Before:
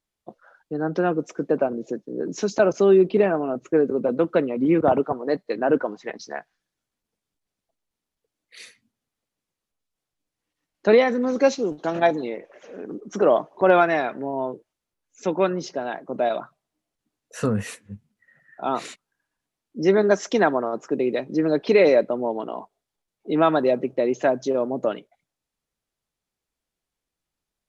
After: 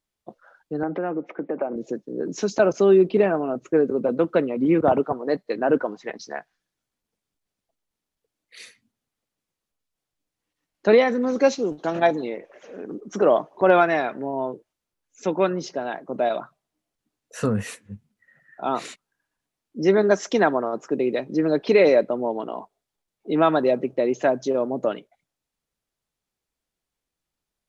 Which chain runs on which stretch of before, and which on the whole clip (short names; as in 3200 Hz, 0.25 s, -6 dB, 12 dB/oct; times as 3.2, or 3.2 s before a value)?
0.83–1.76 compressor 5:1, threshold -27 dBFS + speaker cabinet 180–2800 Hz, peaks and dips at 180 Hz +4 dB, 310 Hz +6 dB, 560 Hz +6 dB, 830 Hz +8 dB, 1200 Hz +3 dB, 2100 Hz +8 dB
whole clip: dry